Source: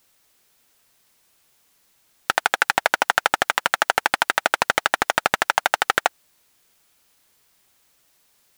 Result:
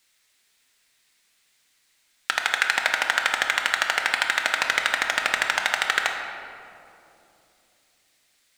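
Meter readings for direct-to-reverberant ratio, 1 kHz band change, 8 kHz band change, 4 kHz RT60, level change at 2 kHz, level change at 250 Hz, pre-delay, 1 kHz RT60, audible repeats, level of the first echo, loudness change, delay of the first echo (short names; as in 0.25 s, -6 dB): 3.0 dB, -6.5 dB, -1.5 dB, 1.4 s, 0.0 dB, -8.0 dB, 3 ms, 2.5 s, none, none, -1.5 dB, none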